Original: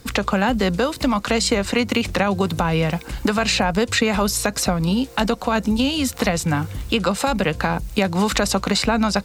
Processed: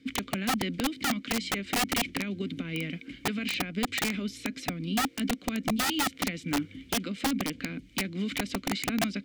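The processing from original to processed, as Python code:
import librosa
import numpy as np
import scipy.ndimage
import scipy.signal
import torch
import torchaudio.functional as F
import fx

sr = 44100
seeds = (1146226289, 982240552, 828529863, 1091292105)

y = fx.vowel_filter(x, sr, vowel='i')
y = (np.mod(10.0 ** (24.0 / 20.0) * y + 1.0, 2.0) - 1.0) / 10.0 ** (24.0 / 20.0)
y = y * 10.0 ** (2.5 / 20.0)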